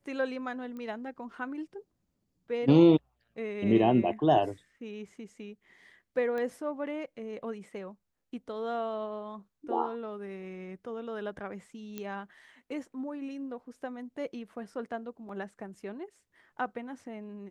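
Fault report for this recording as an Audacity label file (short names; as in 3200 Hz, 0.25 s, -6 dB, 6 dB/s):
0.770000	0.770000	pop -31 dBFS
6.380000	6.380000	pop -25 dBFS
11.980000	11.980000	pop -23 dBFS
15.290000	15.290000	gap 3.2 ms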